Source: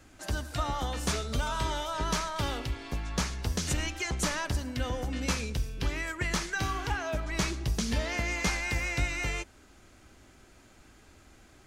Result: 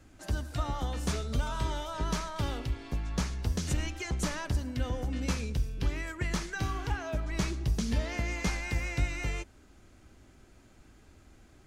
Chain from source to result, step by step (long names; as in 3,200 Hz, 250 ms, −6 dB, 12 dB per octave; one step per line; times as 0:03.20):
low-shelf EQ 430 Hz +7 dB
level −5.5 dB